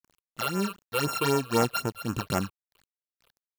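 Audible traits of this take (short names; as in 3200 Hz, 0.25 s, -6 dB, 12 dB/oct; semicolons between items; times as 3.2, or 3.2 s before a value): a buzz of ramps at a fixed pitch in blocks of 32 samples; tremolo triangle 1.9 Hz, depth 65%; a quantiser's noise floor 10-bit, dither none; phasing stages 8, 3.9 Hz, lowest notch 220–4100 Hz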